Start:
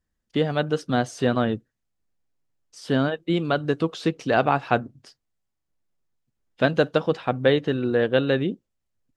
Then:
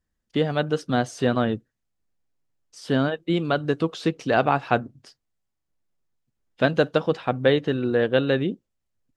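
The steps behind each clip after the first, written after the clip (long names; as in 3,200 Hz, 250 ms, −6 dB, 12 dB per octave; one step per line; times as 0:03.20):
no processing that can be heard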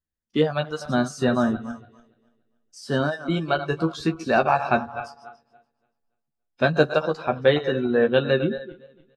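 feedback delay that plays each chunk backwards 143 ms, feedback 56%, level −10.5 dB
noise reduction from a noise print of the clip's start 13 dB
double-tracking delay 13 ms −5.5 dB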